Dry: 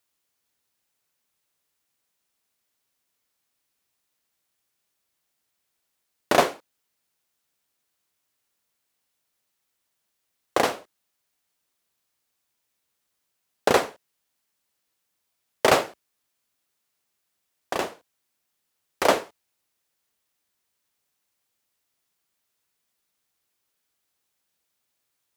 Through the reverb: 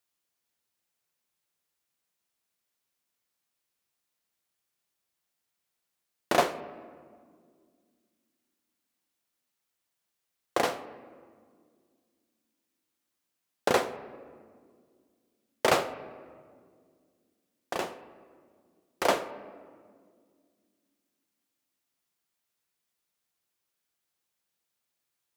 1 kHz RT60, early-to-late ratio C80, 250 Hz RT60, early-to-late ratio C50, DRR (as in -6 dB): 1.7 s, 15.0 dB, 3.0 s, 14.0 dB, 10.5 dB